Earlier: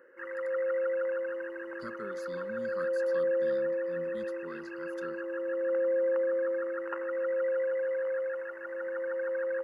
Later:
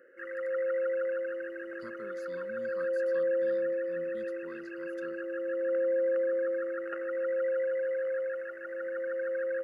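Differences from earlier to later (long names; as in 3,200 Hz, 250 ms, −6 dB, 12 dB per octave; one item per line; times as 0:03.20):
speech −5.5 dB
background: add Butterworth band-reject 960 Hz, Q 1.7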